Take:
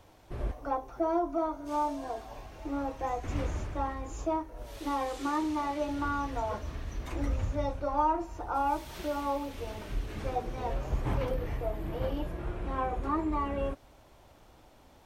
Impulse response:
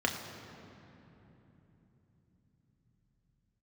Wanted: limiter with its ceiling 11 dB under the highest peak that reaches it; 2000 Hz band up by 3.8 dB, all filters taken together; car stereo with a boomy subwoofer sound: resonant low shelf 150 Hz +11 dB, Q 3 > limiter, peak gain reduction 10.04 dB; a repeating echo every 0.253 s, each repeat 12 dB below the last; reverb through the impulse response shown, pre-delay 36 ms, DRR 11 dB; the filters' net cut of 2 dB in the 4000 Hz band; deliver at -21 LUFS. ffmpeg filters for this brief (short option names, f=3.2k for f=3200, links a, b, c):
-filter_complex "[0:a]equalizer=f=2k:t=o:g=6.5,equalizer=f=4k:t=o:g=-5.5,alimiter=level_in=3dB:limit=-24dB:level=0:latency=1,volume=-3dB,aecho=1:1:253|506|759:0.251|0.0628|0.0157,asplit=2[a][b];[1:a]atrim=start_sample=2205,adelay=36[c];[b][c]afir=irnorm=-1:irlink=0,volume=-20dB[d];[a][d]amix=inputs=2:normalize=0,lowshelf=f=150:t=q:w=3:g=11,volume=11dB,alimiter=limit=-9.5dB:level=0:latency=1"